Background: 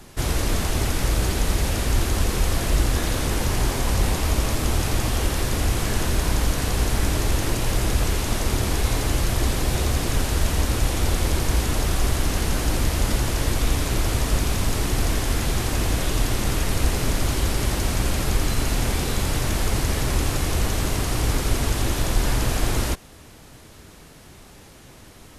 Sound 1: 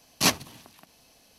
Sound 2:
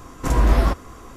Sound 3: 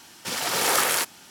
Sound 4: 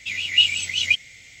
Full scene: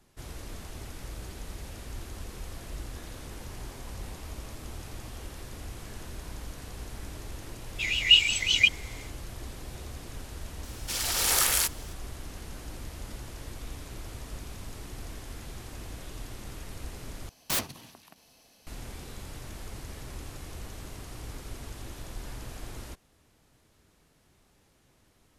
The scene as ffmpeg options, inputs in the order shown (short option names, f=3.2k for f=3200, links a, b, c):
-filter_complex "[0:a]volume=-19dB[a];[3:a]highshelf=f=2.4k:g=11.5[b];[1:a]aeval=exprs='(mod(9.44*val(0)+1,2)-1)/9.44':c=same[c];[a]asplit=2[d][e];[d]atrim=end=17.294[f];[c]atrim=end=1.38,asetpts=PTS-STARTPTS,volume=-1.5dB[g];[e]atrim=start=18.666[h];[4:a]atrim=end=1.4,asetpts=PTS-STARTPTS,volume=-1.5dB,afade=t=in:d=0.1,afade=t=out:st=1.3:d=0.1,adelay=7730[i];[b]atrim=end=1.3,asetpts=PTS-STARTPTS,volume=-10.5dB,afade=t=in:d=0.004:c=hsin,afade=t=out:st=1.296:d=0.004:c=hsin,adelay=10630[j];[f][g]acrossfade=d=0.004:c1=hsin:c2=hsin[k];[k][h]acrossfade=d=0.004:c1=hsin:c2=hsin[l];[l][i][j]amix=inputs=3:normalize=0"